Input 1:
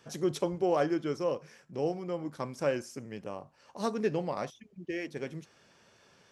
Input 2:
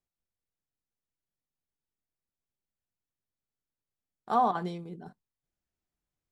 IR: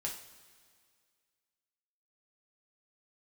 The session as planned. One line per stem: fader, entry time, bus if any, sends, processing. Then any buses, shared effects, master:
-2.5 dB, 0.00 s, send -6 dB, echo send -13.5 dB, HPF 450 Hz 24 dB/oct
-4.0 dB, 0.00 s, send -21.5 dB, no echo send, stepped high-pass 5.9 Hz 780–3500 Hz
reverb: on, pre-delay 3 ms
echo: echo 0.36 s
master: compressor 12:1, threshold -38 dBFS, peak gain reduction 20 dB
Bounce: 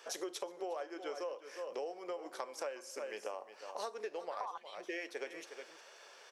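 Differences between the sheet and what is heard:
stem 1 -2.5 dB -> +5.0 dB; reverb return -8.5 dB

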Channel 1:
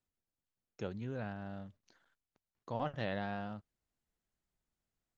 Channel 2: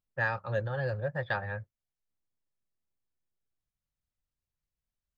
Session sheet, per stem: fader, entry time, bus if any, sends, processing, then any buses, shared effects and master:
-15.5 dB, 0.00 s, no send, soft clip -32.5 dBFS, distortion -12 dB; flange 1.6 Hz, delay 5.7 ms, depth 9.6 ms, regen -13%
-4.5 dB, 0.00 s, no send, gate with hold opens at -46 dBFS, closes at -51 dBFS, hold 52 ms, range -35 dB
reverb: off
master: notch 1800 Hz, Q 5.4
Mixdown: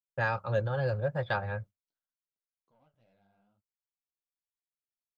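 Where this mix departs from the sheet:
stem 1 -15.5 dB -> -25.5 dB; stem 2 -4.5 dB -> +2.5 dB

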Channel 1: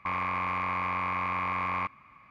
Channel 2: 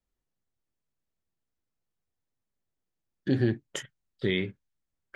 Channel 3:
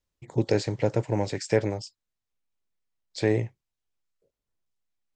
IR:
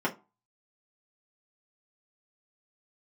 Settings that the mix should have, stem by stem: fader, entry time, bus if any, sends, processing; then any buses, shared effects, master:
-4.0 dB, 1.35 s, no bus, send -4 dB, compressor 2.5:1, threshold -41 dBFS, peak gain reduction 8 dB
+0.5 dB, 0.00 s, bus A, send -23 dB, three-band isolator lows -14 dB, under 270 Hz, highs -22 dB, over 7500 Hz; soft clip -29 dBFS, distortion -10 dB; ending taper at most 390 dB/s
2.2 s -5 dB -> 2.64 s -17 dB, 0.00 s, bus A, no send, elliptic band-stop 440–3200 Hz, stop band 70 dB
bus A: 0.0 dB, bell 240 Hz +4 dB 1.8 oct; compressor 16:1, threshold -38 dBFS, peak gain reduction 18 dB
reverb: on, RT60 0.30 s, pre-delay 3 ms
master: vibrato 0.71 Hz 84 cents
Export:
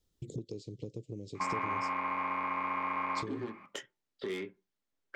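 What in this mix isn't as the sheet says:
stem 3 -5.0 dB -> +5.5 dB; master: missing vibrato 0.71 Hz 84 cents

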